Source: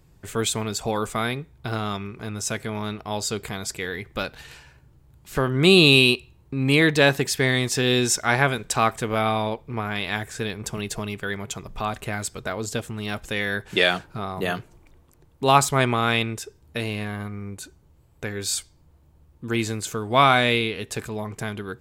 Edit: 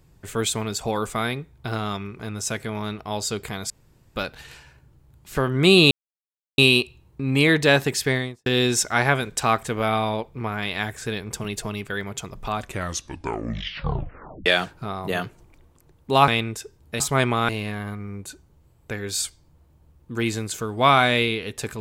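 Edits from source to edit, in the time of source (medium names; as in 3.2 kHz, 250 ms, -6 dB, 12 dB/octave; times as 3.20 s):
3.70–4.16 s: room tone
5.91 s: insert silence 0.67 s
7.38–7.79 s: studio fade out
11.91 s: tape stop 1.88 s
15.61–16.10 s: move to 16.82 s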